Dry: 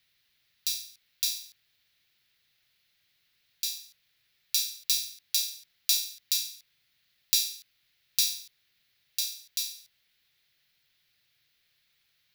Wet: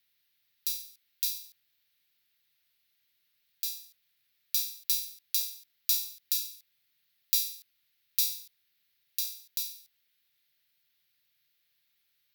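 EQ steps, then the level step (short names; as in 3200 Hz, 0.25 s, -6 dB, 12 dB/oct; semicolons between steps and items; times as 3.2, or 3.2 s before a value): HPF 120 Hz 6 dB/oct; bell 16000 Hz +12 dB 0.69 oct; -7.0 dB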